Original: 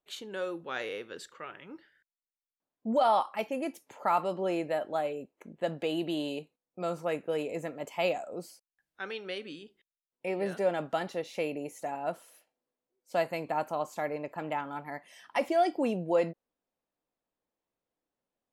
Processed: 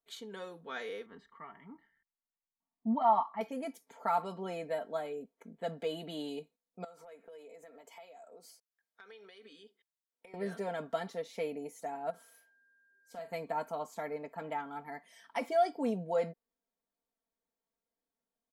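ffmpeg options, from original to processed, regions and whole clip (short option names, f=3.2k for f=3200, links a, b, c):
-filter_complex "[0:a]asettb=1/sr,asplit=3[a][b][c];[a]atrim=end=1.064[d];[b]atrim=start=1.06:end=3.41,asetpts=PTS-STARTPTS,afade=t=in:d=0.004:c=qsin,afade=t=out:st=2.346:d=0.004:c=qsin,lowpass=1.5k,aecho=1:1:1:0.82,atrim=end_sample=103635[e];[c]atrim=start=3.406[f];[d][e]acrossfade=d=0.004:c1=hsin:c2=qsin[g];[g][f]acrossfade=d=0.004:c1=qsin:c2=hsin,asettb=1/sr,asplit=3[h][i][j];[h]atrim=end=6.844[k];[i]atrim=start=6.84:end=10.34,asetpts=PTS-STARTPTS,afade=t=in:d=0.004:c=qsin,afade=t=out:st=3.496:d=0.004:c=qsin,highpass=350,acompressor=threshold=-45dB:ratio=12:attack=3.2:release=140:knee=1:detection=peak[l];[j]atrim=start=10.336[m];[k][l]acrossfade=d=0.004:c1=hsin:c2=qsin[n];[n][m]acrossfade=d=0.004:c1=qsin:c2=hsin,asettb=1/sr,asplit=3[o][p][q];[o]atrim=end=12.104[r];[p]atrim=start=12.1:end=13.32,asetpts=PTS-STARTPTS,afade=t=in:d=0.004:c=qsin,afade=t=out:st=1.216:d=0.004:c=qsin,acompressor=threshold=-48dB:ratio=2:attack=3.2:release=140:knee=1:detection=peak,aeval=exprs='val(0)+0.000708*sin(2*PI*1600*n/s)':c=same,asplit=2[s][t];[t]adelay=41,volume=-9.5dB[u];[s][u]amix=inputs=2:normalize=0,atrim=end_sample=53802[v];[q]atrim=start=13.316[w];[r][v]acrossfade=d=0.004:c1=hsin:c2=qsin[x];[x][w]acrossfade=d=0.004:c1=qsin:c2=hsin,bandreject=f=2.7k:w=7.6,aecho=1:1:4.4:0.78,volume=-6.5dB"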